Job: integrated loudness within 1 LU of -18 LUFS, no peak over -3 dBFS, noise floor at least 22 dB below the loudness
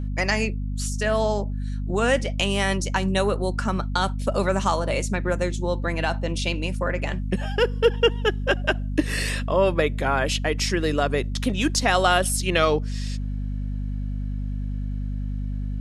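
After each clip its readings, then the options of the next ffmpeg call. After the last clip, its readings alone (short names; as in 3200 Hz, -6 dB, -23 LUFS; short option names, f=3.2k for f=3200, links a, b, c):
hum 50 Hz; harmonics up to 250 Hz; hum level -25 dBFS; loudness -24.0 LUFS; peak -5.5 dBFS; loudness target -18.0 LUFS
-> -af "bandreject=f=50:t=h:w=6,bandreject=f=100:t=h:w=6,bandreject=f=150:t=h:w=6,bandreject=f=200:t=h:w=6,bandreject=f=250:t=h:w=6"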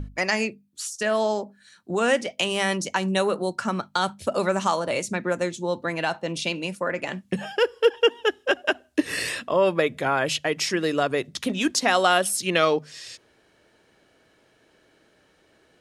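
hum none; loudness -24.5 LUFS; peak -5.5 dBFS; loudness target -18.0 LUFS
-> -af "volume=6.5dB,alimiter=limit=-3dB:level=0:latency=1"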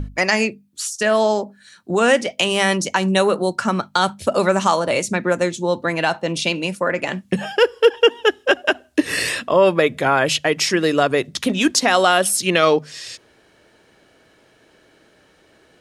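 loudness -18.5 LUFS; peak -3.0 dBFS; noise floor -56 dBFS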